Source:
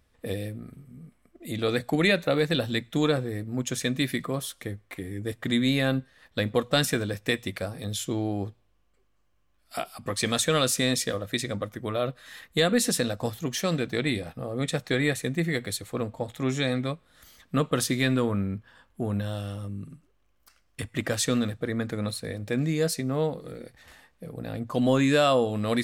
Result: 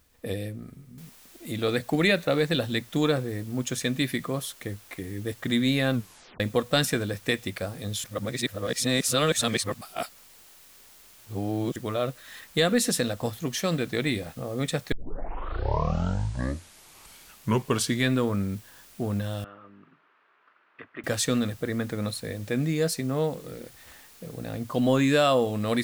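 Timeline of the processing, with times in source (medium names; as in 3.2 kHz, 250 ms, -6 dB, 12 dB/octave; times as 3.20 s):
0.98 s: noise floor step -68 dB -53 dB
5.93 s: tape stop 0.47 s
8.04–11.76 s: reverse
14.92 s: tape start 3.19 s
19.44–21.04 s: cabinet simulation 480–2100 Hz, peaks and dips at 530 Hz -7 dB, 770 Hz -7 dB, 1.3 kHz +4 dB, 2.1 kHz -5 dB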